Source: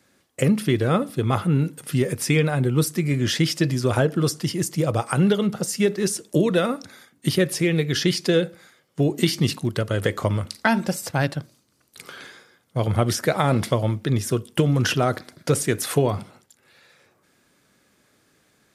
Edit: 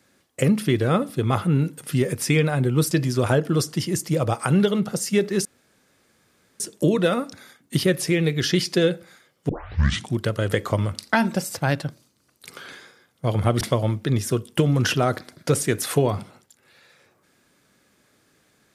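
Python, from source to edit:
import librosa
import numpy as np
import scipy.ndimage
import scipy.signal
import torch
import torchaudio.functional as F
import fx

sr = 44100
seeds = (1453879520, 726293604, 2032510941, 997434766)

y = fx.edit(x, sr, fx.cut(start_s=2.91, length_s=0.67),
    fx.insert_room_tone(at_s=6.12, length_s=1.15),
    fx.tape_start(start_s=9.01, length_s=0.67),
    fx.cut(start_s=13.13, length_s=0.48), tone=tone)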